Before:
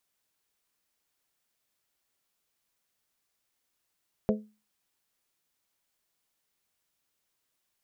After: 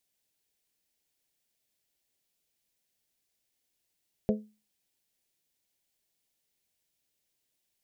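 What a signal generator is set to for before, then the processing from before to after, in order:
glass hit bell, lowest mode 213 Hz, modes 4, decay 0.32 s, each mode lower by 2 dB, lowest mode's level -21 dB
bell 1200 Hz -12.5 dB 0.84 oct

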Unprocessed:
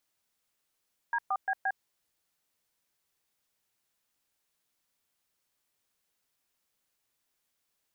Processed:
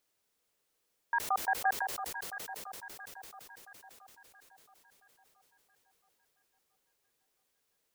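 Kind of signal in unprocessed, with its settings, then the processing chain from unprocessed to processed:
DTMF "D4BB", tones 55 ms, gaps 0.119 s, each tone -29 dBFS
bell 450 Hz +7.5 dB 0.73 oct; echo with dull and thin repeats by turns 0.337 s, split 1000 Hz, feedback 70%, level -6 dB; sustainer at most 40 dB/s

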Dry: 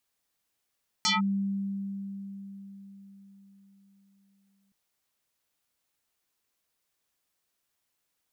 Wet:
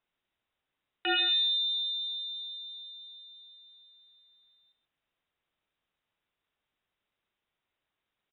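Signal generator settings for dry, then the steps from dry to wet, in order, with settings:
FM tone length 3.67 s, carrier 197 Hz, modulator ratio 5.51, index 6.2, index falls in 0.16 s linear, decay 4.64 s, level -21.5 dB
de-hum 116.2 Hz, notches 17; on a send: echo 0.132 s -11.5 dB; on the sum: inverted band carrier 3800 Hz

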